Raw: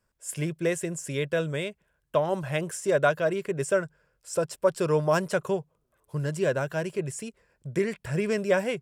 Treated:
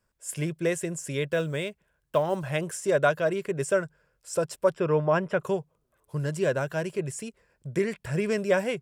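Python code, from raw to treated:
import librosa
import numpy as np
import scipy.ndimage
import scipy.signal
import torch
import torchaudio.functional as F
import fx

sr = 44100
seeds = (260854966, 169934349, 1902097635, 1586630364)

y = fx.block_float(x, sr, bits=7, at=(1.32, 2.51))
y = fx.savgol(y, sr, points=25, at=(4.74, 5.4))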